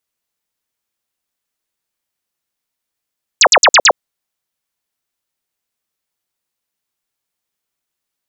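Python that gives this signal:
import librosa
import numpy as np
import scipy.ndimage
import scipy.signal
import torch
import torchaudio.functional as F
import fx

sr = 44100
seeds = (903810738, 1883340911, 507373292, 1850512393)

y = fx.laser_zaps(sr, level_db=-4.0, start_hz=8200.0, end_hz=440.0, length_s=0.06, wave='sine', shots=5, gap_s=0.05)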